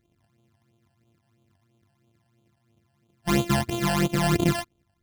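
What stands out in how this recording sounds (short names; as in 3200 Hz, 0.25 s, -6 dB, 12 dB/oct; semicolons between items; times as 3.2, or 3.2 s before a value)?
a buzz of ramps at a fixed pitch in blocks of 128 samples; phasing stages 12, 3 Hz, lowest notch 370–1800 Hz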